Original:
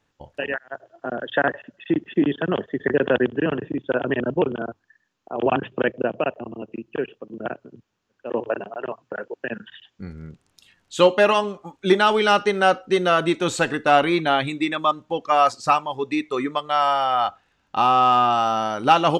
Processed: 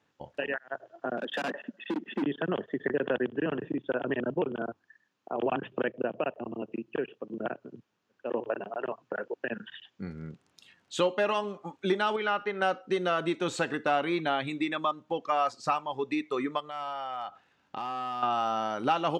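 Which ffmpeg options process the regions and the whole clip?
ffmpeg -i in.wav -filter_complex "[0:a]asettb=1/sr,asplit=3[link_01][link_02][link_03];[link_01]atrim=end=1.174[link_04];[link_02]atrim=start=1.17:end=2.23,asetpts=PTS-STARTPTS,afade=type=in:duration=0.004:curve=qsin,afade=type=out:start_time=1.056:duration=0.004:curve=qsin,volume=25.5dB,asoftclip=hard,volume=-25.5dB,lowshelf=frequency=150:width_type=q:width=3:gain=-11[link_05];[link_03]atrim=start=2.226[link_06];[link_04][link_05]acrossfade=duration=0.004:curve1=hsin:curve2=qsin[link_07];[link_07][link_06]acrossfade=duration=0.004:curve1=qsin:curve2=hsin,asettb=1/sr,asplit=3[link_08][link_09][link_10];[link_08]atrim=end=12.164[link_11];[link_09]atrim=start=12.16:end=12.62,asetpts=PTS-STARTPTS,afade=type=in:duration=0.004:curve=qsin,afade=type=out:start_time=0.456:duration=0.004:curve=qsin,lowpass=1700,tiltshelf=frequency=1200:gain=-7[link_12];[link_10]atrim=start=12.616[link_13];[link_11][link_12]acrossfade=duration=0.004:curve1=hsin:curve2=qsin[link_14];[link_14][link_13]acrossfade=duration=0.004:curve1=qsin:curve2=hsin,asettb=1/sr,asplit=3[link_15][link_16][link_17];[link_15]atrim=end=16.604[link_18];[link_16]atrim=start=16.6:end=18.23,asetpts=PTS-STARTPTS,afade=type=in:duration=0.004:curve=qsin,afade=type=out:start_time=1.626:duration=0.004:curve=qsin,asoftclip=type=hard:threshold=-13dB,acompressor=threshold=-36dB:ratio=3:attack=3.2:release=140:knee=1:detection=peak[link_19];[link_17]atrim=start=18.226[link_20];[link_18][link_19]acrossfade=duration=0.004:curve1=hsin:curve2=qsin[link_21];[link_21][link_20]acrossfade=duration=0.004:curve1=qsin:curve2=hsin,highpass=130,highshelf=frequency=7800:gain=-10,acompressor=threshold=-30dB:ratio=2,volume=-1dB" out.wav

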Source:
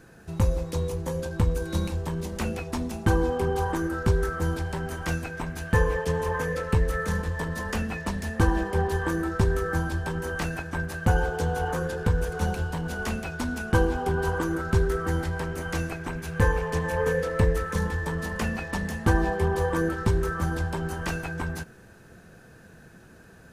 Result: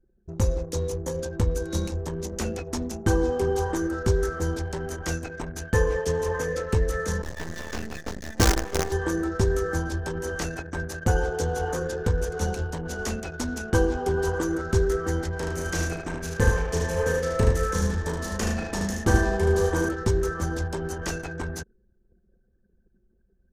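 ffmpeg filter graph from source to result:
ffmpeg -i in.wav -filter_complex "[0:a]asettb=1/sr,asplit=3[link_01][link_02][link_03];[link_01]atrim=end=7.224[link_04];[link_02]atrim=start=7.22:end=8.92,asetpts=PTS-STARTPTS,afade=type=in:duration=0.004:curve=qsin,afade=type=out:start_time=1.696:duration=0.004:curve=qsin,lowpass=frequency=5500:width=0.5412,lowpass=frequency=5500:width=1.3066,asplit=2[link_05][link_06];[link_06]adelay=17,volume=-5dB[link_07];[link_05][link_07]amix=inputs=2:normalize=0,atrim=end_sample=74970,acrusher=bits=4:dc=4:mix=0:aa=0.000001[link_08];[link_03]atrim=start=8.916[link_09];[link_04][link_08]acrossfade=duration=0.004:curve1=hsin:curve2=qsin[link_10];[link_10][link_09]acrossfade=duration=0.004:curve1=qsin:curve2=hsin,asettb=1/sr,asplit=3[link_11][link_12][link_13];[link_11]atrim=end=15.394[link_14];[link_12]atrim=start=15.39:end=19.89,asetpts=PTS-STARTPTS,afade=type=in:duration=0.004:curve=qsin,afade=type=out:start_time=4.496:duration=0.004:curve=qsin,asplit=2[link_15][link_16];[link_16]adelay=35,volume=-5dB[link_17];[link_15][link_17]amix=inputs=2:normalize=0,atrim=end_sample=198450,aecho=1:1:76:0.596,atrim=end_sample=198450[link_18];[link_13]atrim=start=19.886[link_19];[link_14][link_18]acrossfade=duration=0.004:curve1=hsin:curve2=qsin[link_20];[link_20][link_19]acrossfade=duration=0.004:curve1=qsin:curve2=hsin,equalizer=frequency=160:width_type=o:width=0.67:gain=-4,equalizer=frequency=400:width_type=o:width=0.67:gain=4,equalizer=frequency=1000:width_type=o:width=0.67:gain=-4,equalizer=frequency=2500:width_type=o:width=0.67:gain=-4,equalizer=frequency=6300:width_type=o:width=0.67:gain=9,anlmdn=1.58" out.wav

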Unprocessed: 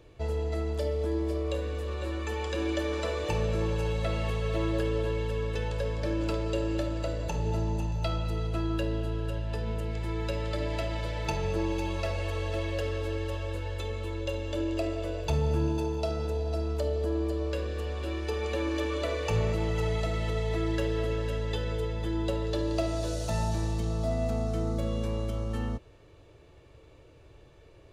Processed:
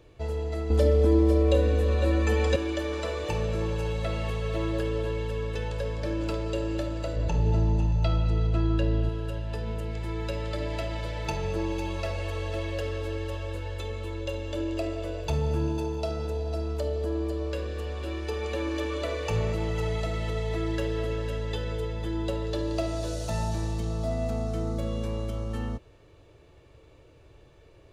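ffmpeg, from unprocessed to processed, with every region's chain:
ffmpeg -i in.wav -filter_complex "[0:a]asettb=1/sr,asplit=3[link_01][link_02][link_03];[link_01]atrim=end=0.704[link_04];[link_02]atrim=start=0.7:end=2.56,asetpts=PTS-STARTPTS,afade=type=in:duration=0.004:curve=qsin,afade=type=out:start_time=1.856:duration=0.004:curve=qsin,tiltshelf=frequency=710:gain=3.5,aecho=1:1:3.9:0.93,atrim=end_sample=82026,acontrast=33[link_05];[link_03]atrim=start=2.556[link_06];[link_04][link_05]acrossfade=duration=0.004:curve1=hsin:curve2=qsin[link_07];[link_07][link_06]acrossfade=duration=0.004:curve1=qsin:curve2=hsin,asettb=1/sr,asplit=3[link_08][link_09][link_10];[link_08]atrim=end=7.164[link_11];[link_09]atrim=start=7.16:end=9.09,asetpts=PTS-STARTPTS,afade=type=in:duration=0.004:curve=qsin,afade=type=out:start_time=1.926:duration=0.004:curve=qsin,lowpass=6200,lowshelf=frequency=250:gain=7.5[link_12];[link_10]atrim=start=9.086[link_13];[link_11][link_12]acrossfade=duration=0.004:curve1=hsin:curve2=qsin[link_14];[link_14][link_13]acrossfade=duration=0.004:curve1=qsin:curve2=hsin" out.wav

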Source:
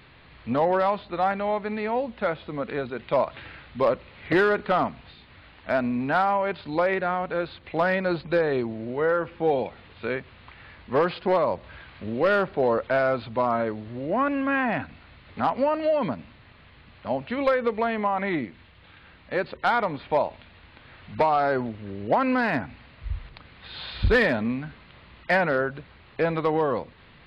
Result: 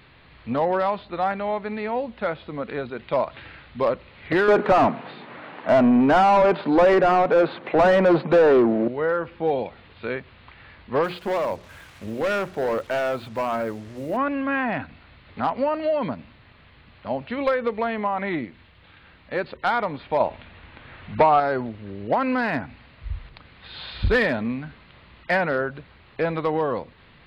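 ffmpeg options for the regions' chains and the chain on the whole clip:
ffmpeg -i in.wav -filter_complex "[0:a]asettb=1/sr,asplit=3[link_01][link_02][link_03];[link_01]atrim=end=4.484[link_04];[link_02]atrim=start=4.48:end=8.88,asetpts=PTS-STARTPTS,afade=type=in:duration=0.004:curve=qsin,afade=type=out:start_time=4.396:duration=0.004:curve=qsin,highpass=frequency=140:width=0.5412,highpass=frequency=140:width=1.3066,tiltshelf=frequency=1400:gain=5,asplit=2[link_05][link_06];[link_06]highpass=frequency=720:poles=1,volume=24dB,asoftclip=type=tanh:threshold=-7.5dB[link_07];[link_05][link_07]amix=inputs=2:normalize=0,lowpass=frequency=1000:poles=1,volume=-6dB[link_08];[link_03]atrim=start=8.876[link_09];[link_04][link_08]acrossfade=duration=0.004:curve1=hsin:curve2=qsin[link_10];[link_10][link_09]acrossfade=duration=0.004:curve1=qsin:curve2=hsin,asettb=1/sr,asplit=3[link_11][link_12][link_13];[link_11]atrim=end=11.044[link_14];[link_12]atrim=start=11.04:end=14.17,asetpts=PTS-STARTPTS,afade=type=in:duration=0.004:curve=qsin,afade=type=out:start_time=3.126:duration=0.004:curve=qsin,bandreject=frequency=60:width_type=h:width=6,bandreject=frequency=120:width_type=h:width=6,bandreject=frequency=180:width_type=h:width=6,bandreject=frequency=240:width_type=h:width=6,bandreject=frequency=300:width_type=h:width=6,bandreject=frequency=360:width_type=h:width=6,bandreject=frequency=420:width_type=h:width=6,acrusher=bits=7:mix=0:aa=0.5,volume=19.5dB,asoftclip=hard,volume=-19.5dB[link_15];[link_13]atrim=start=14.166[link_16];[link_14][link_15]acrossfade=duration=0.004:curve1=hsin:curve2=qsin[link_17];[link_17][link_16]acrossfade=duration=0.004:curve1=qsin:curve2=hsin,asettb=1/sr,asplit=3[link_18][link_19][link_20];[link_18]atrim=end=20.204[link_21];[link_19]atrim=start=20.2:end=21.4,asetpts=PTS-STARTPTS,afade=type=in:duration=0.004:curve=qsin,afade=type=out:start_time=1.196:duration=0.004:curve=qsin,lowpass=3500,acontrast=29[link_22];[link_20]atrim=start=21.396[link_23];[link_21][link_22]acrossfade=duration=0.004:curve1=hsin:curve2=qsin[link_24];[link_24][link_23]acrossfade=duration=0.004:curve1=qsin:curve2=hsin" out.wav

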